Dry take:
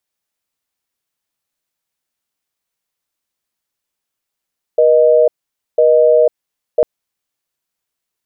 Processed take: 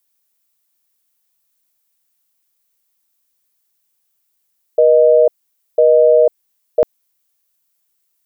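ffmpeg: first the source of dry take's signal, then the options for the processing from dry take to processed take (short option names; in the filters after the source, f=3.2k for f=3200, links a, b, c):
-f lavfi -i "aevalsrc='0.335*(sin(2*PI*480*t)+sin(2*PI*620*t))*clip(min(mod(t,1),0.5-mod(t,1))/0.005,0,1)':d=2.05:s=44100"
-af "aemphasis=mode=production:type=50kf"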